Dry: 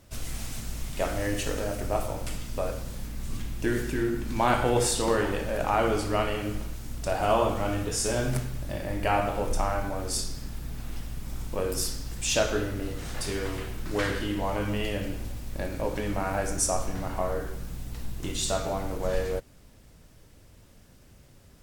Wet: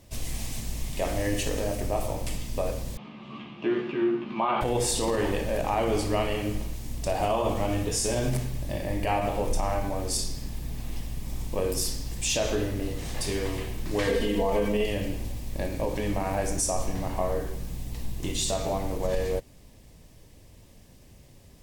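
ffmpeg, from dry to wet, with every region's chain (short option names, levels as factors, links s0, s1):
-filter_complex "[0:a]asettb=1/sr,asplit=3[s0][s1][s2];[s0]atrim=end=2.974[s3];[s1]atrim=start=2.97:end=4.61,asetpts=PTS-STARTPTS,afade=t=in:d=0.004:c=qsin,afade=t=out:st=1.636:d=0.004:c=qsin,highpass=f=180:w=0.5412,highpass=f=180:w=1.3066,equalizer=f=270:t=q:w=4:g=-7,equalizer=f=480:t=q:w=4:g=-6,equalizer=f=1200:t=q:w=4:g=10,equalizer=f=1800:t=q:w=4:g=-9,equalizer=f=2900:t=q:w=4:g=4,lowpass=f=3000:w=0.5412,lowpass=f=3000:w=1.3066,asplit=2[s4][s5];[s5]adelay=14,volume=0.708[s6];[s4][s6]amix=inputs=2:normalize=0,atrim=end_sample=72324[s7];[s2]atrim=start=4.606[s8];[s3][s7]acrossfade=d=0.004:c1=hsin:c2=qsin[s9];[s9][s8]acrossfade=d=0.004:c1=qsin:c2=hsin,asettb=1/sr,asplit=3[s10][s11][s12];[s10]atrim=end=14.074[s13];[s11]atrim=start=14.07:end=14.86,asetpts=PTS-STARTPTS,afade=t=in:d=0.004:c=qsin,afade=t=out:st=0.786:d=0.004:c=qsin,equalizer=f=470:t=o:w=0.68:g=9,aecho=1:1:4.4:0.79,atrim=end_sample=34839[s14];[s12]atrim=start=14.856[s15];[s13][s14]acrossfade=d=0.004:c1=hsin:c2=qsin[s16];[s16][s15]acrossfade=d=0.004:c1=qsin:c2=hsin,equalizer=f=1400:w=5:g=-13,alimiter=limit=0.119:level=0:latency=1:release=49,volume=1.26"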